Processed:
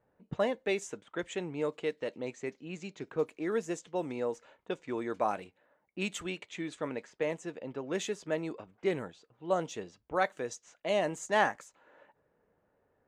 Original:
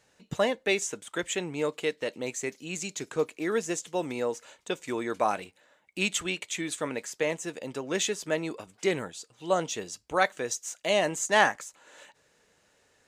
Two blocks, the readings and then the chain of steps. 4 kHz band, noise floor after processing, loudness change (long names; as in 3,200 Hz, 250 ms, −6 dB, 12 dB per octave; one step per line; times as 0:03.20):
−10.0 dB, −75 dBFS, −5.0 dB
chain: low-pass that shuts in the quiet parts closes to 1,200 Hz, open at −25.5 dBFS
high-shelf EQ 2,100 Hz −9.5 dB
level −3 dB